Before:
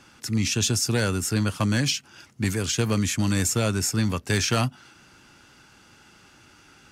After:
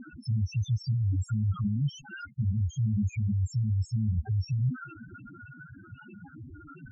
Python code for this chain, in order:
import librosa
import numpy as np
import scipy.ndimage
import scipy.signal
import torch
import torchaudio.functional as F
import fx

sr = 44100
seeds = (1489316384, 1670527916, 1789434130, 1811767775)

y = fx.fuzz(x, sr, gain_db=47.0, gate_db=-56.0)
y = fx.spec_topn(y, sr, count=2)
y = fx.lowpass(y, sr, hz=1500.0, slope=6)
y = y * 10.0 ** (-8.0 / 20.0)